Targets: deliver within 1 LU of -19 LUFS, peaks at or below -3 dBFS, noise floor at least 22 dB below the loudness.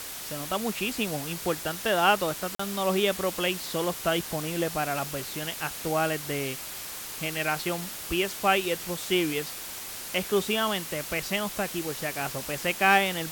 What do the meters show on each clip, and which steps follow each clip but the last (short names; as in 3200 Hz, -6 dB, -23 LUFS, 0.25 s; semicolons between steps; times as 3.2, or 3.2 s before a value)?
dropouts 1; longest dropout 44 ms; noise floor -38 dBFS; noise floor target -50 dBFS; loudness -28.0 LUFS; peak -8.0 dBFS; loudness target -19.0 LUFS
-> interpolate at 2.55, 44 ms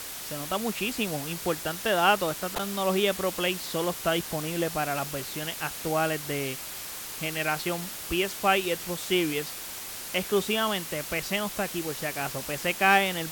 dropouts 0; noise floor -38 dBFS; noise floor target -50 dBFS
-> denoiser 12 dB, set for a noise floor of -38 dBFS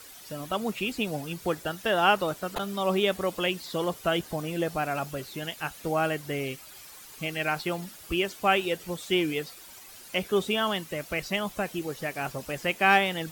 noise floor -48 dBFS; noise floor target -51 dBFS
-> denoiser 6 dB, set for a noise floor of -48 dBFS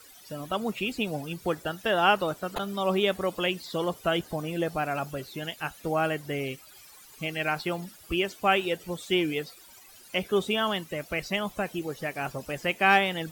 noise floor -52 dBFS; loudness -28.5 LUFS; peak -8.0 dBFS; loudness target -19.0 LUFS
-> gain +9.5 dB; limiter -3 dBFS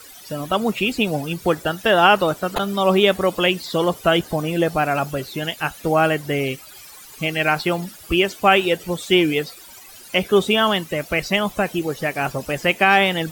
loudness -19.5 LUFS; peak -3.0 dBFS; noise floor -42 dBFS